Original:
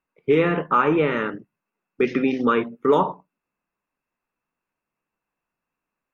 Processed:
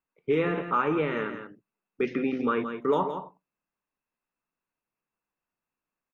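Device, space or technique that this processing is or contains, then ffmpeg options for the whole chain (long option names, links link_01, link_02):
ducked delay: -filter_complex "[0:a]asplit=3[link_01][link_02][link_03];[link_02]adelay=169,volume=-8.5dB[link_04];[link_03]apad=whole_len=277999[link_05];[link_04][link_05]sidechaincompress=threshold=-20dB:ratio=8:attack=16:release=241[link_06];[link_01][link_06]amix=inputs=2:normalize=0,asettb=1/sr,asplit=3[link_07][link_08][link_09];[link_07]atrim=end=2.094[link_10];[link_08]atrim=start=2.09:end=2.6,asetpts=PTS-STARTPTS,afade=type=in:duration=0.004:curve=qsin,afade=type=out:start_time=0.506:duration=0.004:curve=qsin,acrossover=split=3500[link_11][link_12];[link_12]acompressor=threshold=-53dB:ratio=4:attack=1:release=60[link_13];[link_11][link_13]amix=inputs=2:normalize=0[link_14];[link_09]atrim=start=2.596[link_15];[link_10][link_14]acrossfade=duration=0.004:curve1=hsin:curve2=qsin[link_16];[link_16][link_15]acrossfade=duration=0.004:curve1=qsin:curve2=hsin,volume=-7dB"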